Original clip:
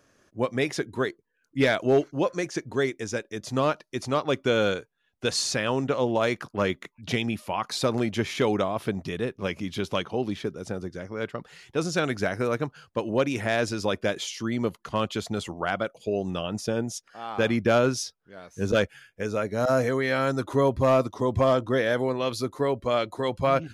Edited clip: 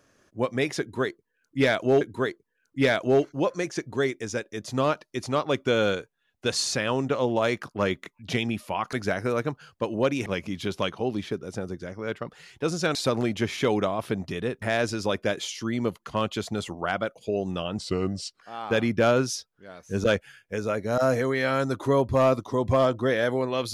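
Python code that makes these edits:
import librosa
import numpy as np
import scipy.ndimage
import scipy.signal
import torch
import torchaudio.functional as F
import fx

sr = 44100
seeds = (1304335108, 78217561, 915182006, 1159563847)

y = fx.edit(x, sr, fx.repeat(start_s=0.8, length_s=1.21, count=2),
    fx.swap(start_s=7.72, length_s=1.67, other_s=12.08, other_length_s=1.33),
    fx.speed_span(start_s=16.57, length_s=0.52, speed=0.82), tone=tone)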